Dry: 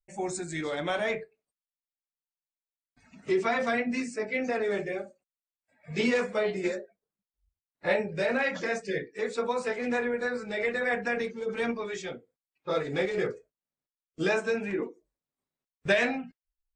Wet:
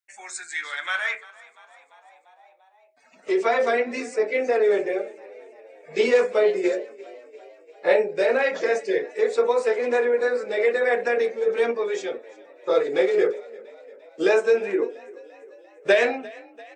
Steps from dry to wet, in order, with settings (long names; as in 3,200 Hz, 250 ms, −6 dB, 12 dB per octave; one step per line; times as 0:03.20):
echo with shifted repeats 345 ms, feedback 63%, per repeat +39 Hz, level −21.5 dB
high-pass filter sweep 1,600 Hz → 420 Hz, 0:00.78–0:03.69
level +3 dB